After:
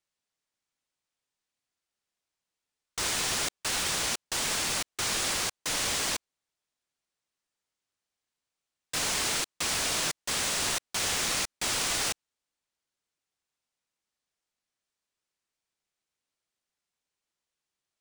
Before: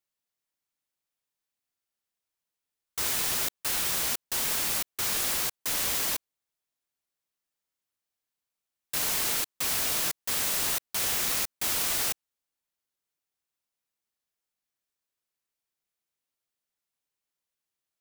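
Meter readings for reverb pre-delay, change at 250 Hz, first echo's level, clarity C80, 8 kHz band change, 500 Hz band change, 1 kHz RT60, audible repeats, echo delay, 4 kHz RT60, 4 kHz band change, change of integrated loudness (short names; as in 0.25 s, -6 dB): none, +2.5 dB, none, none, +0.5 dB, +2.5 dB, none, none, none, none, +2.5 dB, -1.5 dB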